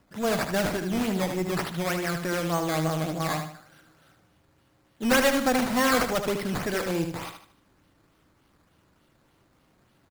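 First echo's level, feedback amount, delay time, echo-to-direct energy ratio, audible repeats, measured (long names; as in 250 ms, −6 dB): −7.0 dB, 36%, 76 ms, −6.5 dB, 4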